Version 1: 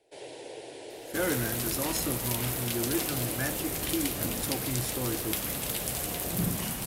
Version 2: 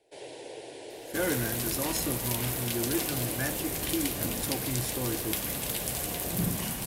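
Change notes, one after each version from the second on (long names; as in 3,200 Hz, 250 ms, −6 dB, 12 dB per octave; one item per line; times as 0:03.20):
master: add notch filter 1,300 Hz, Q 16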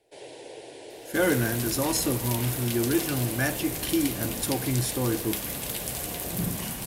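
speech +6.5 dB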